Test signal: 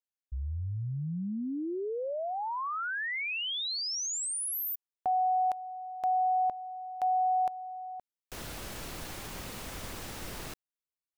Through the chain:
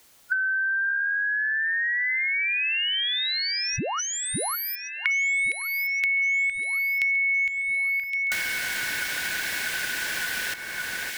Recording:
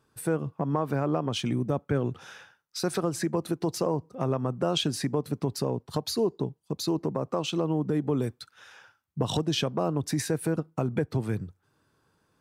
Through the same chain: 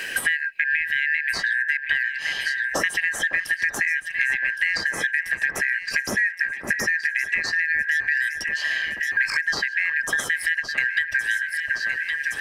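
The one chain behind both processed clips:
band-splitting scrambler in four parts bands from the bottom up 4123
in parallel at +1.5 dB: downward compressor, threshold −41 dBFS
on the sum: delay that swaps between a low-pass and a high-pass 558 ms, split 1,800 Hz, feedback 61%, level −9 dB
multiband upward and downward compressor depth 100%
level +2 dB

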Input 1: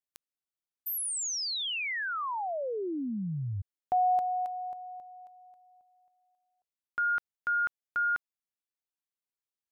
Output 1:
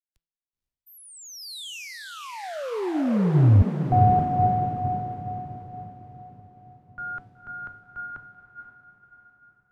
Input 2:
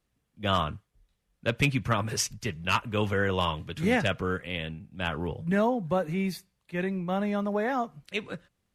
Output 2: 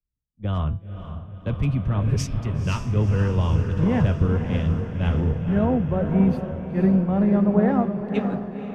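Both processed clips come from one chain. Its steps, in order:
spectral tilt −4.5 dB per octave
hum removal 166.4 Hz, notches 33
brickwall limiter −14.5 dBFS
on a send: feedback delay with all-pass diffusion 504 ms, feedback 68%, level −5.5 dB
on the sum: multiband upward and downward expander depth 70%

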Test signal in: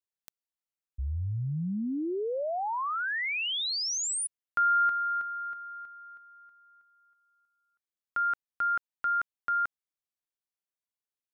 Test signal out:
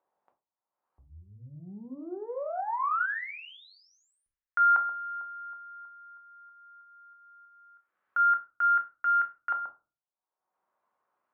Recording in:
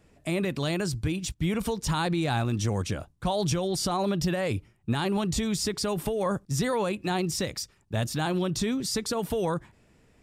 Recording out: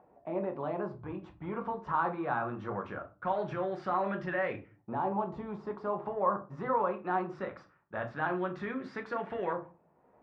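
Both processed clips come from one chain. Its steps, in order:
upward compression, threshold −48 dBFS
harmonic generator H 7 −44 dB, 8 −32 dB, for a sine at −16.5 dBFS
auto-filter low-pass saw up 0.21 Hz 830–1,900 Hz
resonant band-pass 1,200 Hz, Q 0.54
rectangular room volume 150 cubic metres, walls furnished, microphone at 1 metre
level −5 dB

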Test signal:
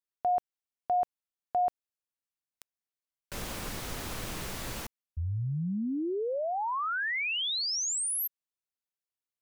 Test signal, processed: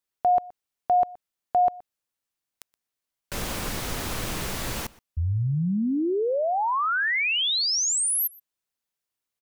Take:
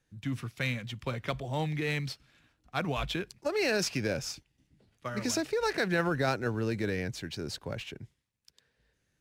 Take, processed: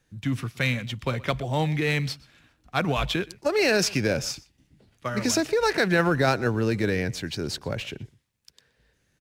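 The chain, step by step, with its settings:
slap from a distant wall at 21 metres, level −22 dB
level +7 dB

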